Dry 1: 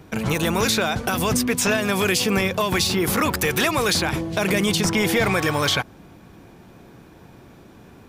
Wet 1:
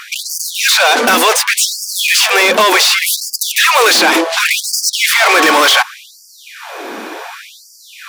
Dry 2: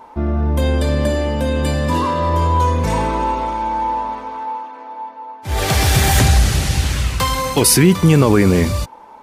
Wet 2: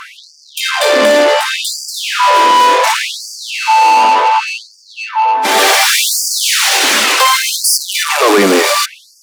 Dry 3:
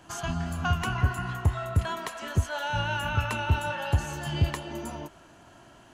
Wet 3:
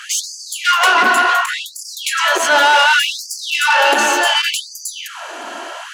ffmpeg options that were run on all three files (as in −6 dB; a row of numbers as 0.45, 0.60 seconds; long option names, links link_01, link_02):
-filter_complex "[0:a]acontrast=76,asplit=2[link_01][link_02];[link_02]highpass=frequency=720:poles=1,volume=29dB,asoftclip=type=tanh:threshold=0dB[link_03];[link_01][link_03]amix=inputs=2:normalize=0,lowpass=frequency=5800:poles=1,volume=-6dB,afftfilt=real='re*gte(b*sr/1024,200*pow(4600/200,0.5+0.5*sin(2*PI*0.68*pts/sr)))':imag='im*gte(b*sr/1024,200*pow(4600/200,0.5+0.5*sin(2*PI*0.68*pts/sr)))':win_size=1024:overlap=0.75,volume=-2dB"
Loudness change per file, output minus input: +10.5, +6.0, +15.5 LU